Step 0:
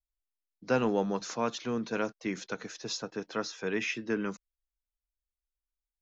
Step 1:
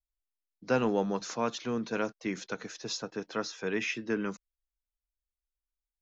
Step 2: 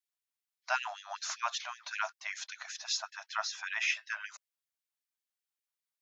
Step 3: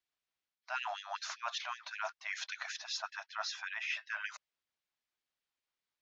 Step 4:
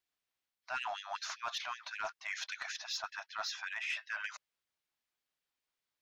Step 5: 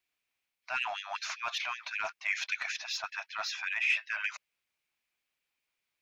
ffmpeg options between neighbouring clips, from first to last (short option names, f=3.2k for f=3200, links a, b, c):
-af anull
-af "afftfilt=real='re*gte(b*sr/1024,560*pow(1700/560,0.5+0.5*sin(2*PI*5.2*pts/sr)))':imag='im*gte(b*sr/1024,560*pow(1700/560,0.5+0.5*sin(2*PI*5.2*pts/sr)))':win_size=1024:overlap=0.75,volume=3dB"
-af "lowpass=4.4k,areverse,acompressor=threshold=-41dB:ratio=6,areverse,volume=5dB"
-af "asoftclip=type=tanh:threshold=-28.5dB,volume=1dB"
-af "equalizer=f=2.4k:t=o:w=0.45:g=10,volume=2dB"